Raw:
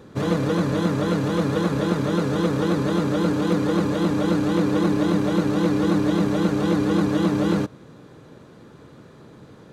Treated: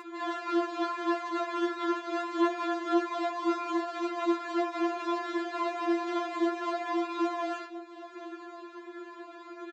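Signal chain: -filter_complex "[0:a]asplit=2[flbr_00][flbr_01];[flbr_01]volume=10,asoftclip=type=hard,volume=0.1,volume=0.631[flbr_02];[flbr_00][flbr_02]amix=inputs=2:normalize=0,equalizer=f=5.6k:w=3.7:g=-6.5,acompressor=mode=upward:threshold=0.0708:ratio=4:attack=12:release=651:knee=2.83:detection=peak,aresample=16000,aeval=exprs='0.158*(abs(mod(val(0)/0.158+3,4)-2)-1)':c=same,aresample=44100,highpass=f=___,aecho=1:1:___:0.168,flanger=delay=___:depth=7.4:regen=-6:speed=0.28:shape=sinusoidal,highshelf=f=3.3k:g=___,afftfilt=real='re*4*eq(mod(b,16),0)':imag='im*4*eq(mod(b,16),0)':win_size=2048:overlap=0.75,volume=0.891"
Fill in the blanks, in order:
350, 770, 9.5, -8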